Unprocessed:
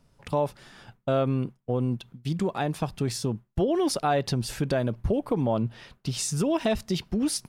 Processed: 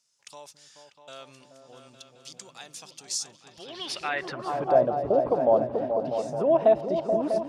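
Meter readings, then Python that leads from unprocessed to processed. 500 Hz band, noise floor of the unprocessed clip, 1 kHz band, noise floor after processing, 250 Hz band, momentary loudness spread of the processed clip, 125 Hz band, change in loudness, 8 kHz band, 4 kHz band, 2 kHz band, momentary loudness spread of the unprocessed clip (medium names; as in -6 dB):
+4.0 dB, -66 dBFS, +2.5 dB, -59 dBFS, -7.0 dB, 21 LU, -14.0 dB, +2.5 dB, -3.5 dB, -3.0 dB, +0.5 dB, 6 LU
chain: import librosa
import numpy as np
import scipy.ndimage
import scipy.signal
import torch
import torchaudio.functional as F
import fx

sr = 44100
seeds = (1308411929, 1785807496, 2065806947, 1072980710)

y = fx.echo_opening(x, sr, ms=215, hz=200, octaves=2, feedback_pct=70, wet_db=-3)
y = fx.filter_sweep_bandpass(y, sr, from_hz=6500.0, to_hz=650.0, start_s=3.46, end_s=4.79, q=2.8)
y = F.gain(torch.from_numpy(y), 9.0).numpy()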